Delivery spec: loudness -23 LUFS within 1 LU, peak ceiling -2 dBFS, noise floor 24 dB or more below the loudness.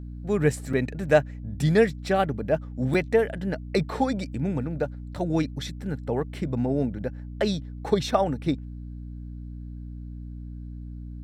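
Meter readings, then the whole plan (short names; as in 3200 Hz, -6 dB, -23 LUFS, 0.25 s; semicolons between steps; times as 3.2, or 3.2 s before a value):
dropouts 2; longest dropout 4.5 ms; hum 60 Hz; harmonics up to 300 Hz; hum level -34 dBFS; loudness -26.5 LUFS; peak -7.5 dBFS; loudness target -23.0 LUFS
-> interpolate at 0.73/2.94, 4.5 ms; notches 60/120/180/240/300 Hz; gain +3.5 dB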